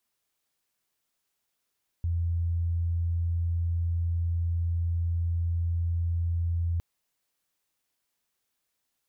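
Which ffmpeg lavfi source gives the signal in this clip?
-f lavfi -i "sine=f=84.9:d=4.76:r=44100,volume=-6.44dB"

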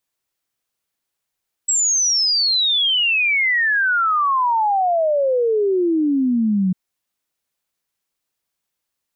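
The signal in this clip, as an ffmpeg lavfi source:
-f lavfi -i "aevalsrc='0.188*clip(min(t,5.05-t)/0.01,0,1)*sin(2*PI*7800*5.05/log(180/7800)*(exp(log(180/7800)*t/5.05)-1))':d=5.05:s=44100"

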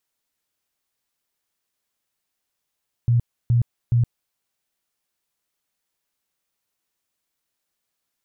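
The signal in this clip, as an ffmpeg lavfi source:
-f lavfi -i "aevalsrc='0.2*sin(2*PI*119*mod(t,0.42))*lt(mod(t,0.42),14/119)':d=1.26:s=44100"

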